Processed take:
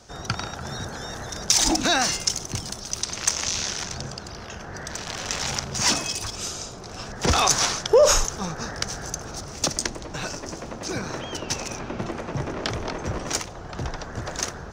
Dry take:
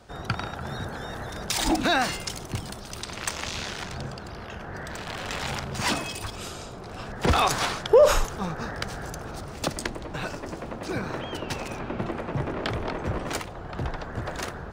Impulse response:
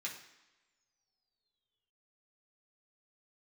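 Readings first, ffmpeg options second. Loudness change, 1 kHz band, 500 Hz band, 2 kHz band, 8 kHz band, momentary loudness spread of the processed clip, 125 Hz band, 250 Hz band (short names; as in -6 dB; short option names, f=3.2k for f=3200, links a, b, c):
+3.5 dB, 0.0 dB, 0.0 dB, +1.0 dB, +12.0 dB, 15 LU, 0.0 dB, 0.0 dB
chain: -af "equalizer=f=6k:t=o:w=0.72:g=15"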